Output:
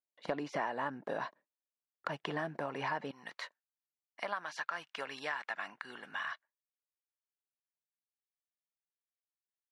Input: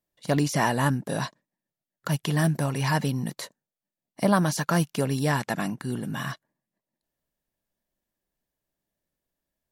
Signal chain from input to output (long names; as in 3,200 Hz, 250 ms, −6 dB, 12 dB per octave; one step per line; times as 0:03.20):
high-pass filter 440 Hz 12 dB per octave, from 0:03.11 1,400 Hz
noise gate with hold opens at −58 dBFS
low-pass filter 2,000 Hz 12 dB per octave
downward compressor 4 to 1, threshold −40 dBFS, peak gain reduction 16.5 dB
level +4.5 dB